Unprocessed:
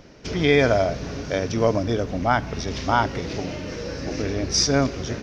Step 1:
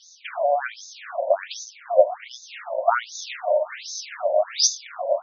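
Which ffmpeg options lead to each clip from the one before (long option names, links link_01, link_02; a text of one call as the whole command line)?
ffmpeg -i in.wav -af "superequalizer=8b=3.98:15b=3.98,acompressor=threshold=-15dB:ratio=6,afftfilt=real='re*between(b*sr/1024,680*pow(5000/680,0.5+0.5*sin(2*PI*1.3*pts/sr))/1.41,680*pow(5000/680,0.5+0.5*sin(2*PI*1.3*pts/sr))*1.41)':imag='im*between(b*sr/1024,680*pow(5000/680,0.5+0.5*sin(2*PI*1.3*pts/sr))/1.41,680*pow(5000/680,0.5+0.5*sin(2*PI*1.3*pts/sr))*1.41)':win_size=1024:overlap=0.75,volume=7.5dB" out.wav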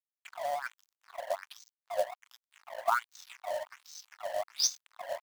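ffmpeg -i in.wav -af "aeval=exprs='sgn(val(0))*max(abs(val(0))-0.02,0)':channel_layout=same,highpass=frequency=1000:width_type=q:width=1.9,acrusher=bits=4:mode=log:mix=0:aa=0.000001,volume=-8.5dB" out.wav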